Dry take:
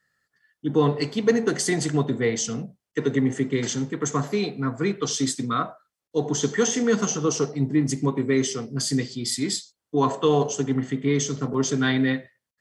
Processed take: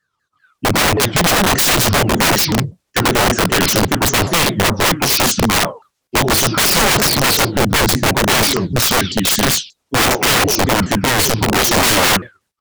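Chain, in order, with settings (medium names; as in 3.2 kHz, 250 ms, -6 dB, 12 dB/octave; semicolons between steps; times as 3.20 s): sawtooth pitch modulation -7.5 st, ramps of 194 ms; integer overflow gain 23.5 dB; level rider gain up to 15.5 dB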